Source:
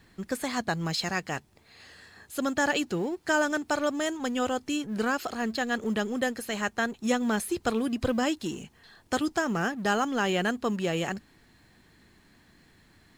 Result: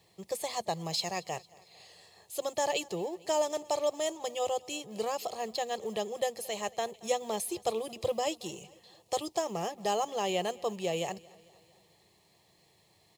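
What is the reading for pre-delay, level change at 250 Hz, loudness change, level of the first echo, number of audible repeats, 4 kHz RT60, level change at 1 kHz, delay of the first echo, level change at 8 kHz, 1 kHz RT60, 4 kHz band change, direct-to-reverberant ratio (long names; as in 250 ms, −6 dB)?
no reverb audible, −13.0 dB, −4.5 dB, −23.0 dB, 3, no reverb audible, −2.5 dB, 226 ms, −0.5 dB, no reverb audible, −2.5 dB, no reverb audible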